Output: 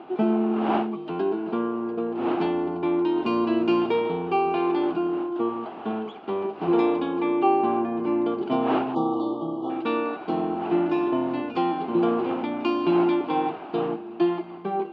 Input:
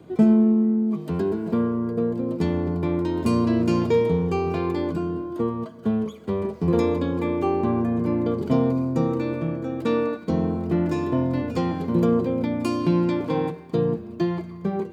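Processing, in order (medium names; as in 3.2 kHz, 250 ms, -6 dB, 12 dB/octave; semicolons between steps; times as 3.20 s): wind noise 560 Hz -36 dBFS; cabinet simulation 340–3800 Hz, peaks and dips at 340 Hz +7 dB, 520 Hz -10 dB, 780 Hz +9 dB, 1.3 kHz +4 dB, 1.9 kHz -5 dB, 2.8 kHz +8 dB; spectral selection erased 8.95–9.70 s, 1.3–2.9 kHz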